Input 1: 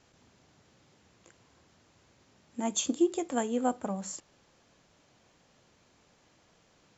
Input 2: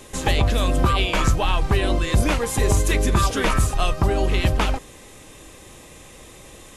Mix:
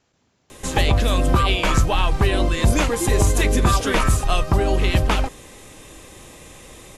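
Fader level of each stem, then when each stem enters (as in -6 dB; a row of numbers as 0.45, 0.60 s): -2.5, +1.5 dB; 0.00, 0.50 s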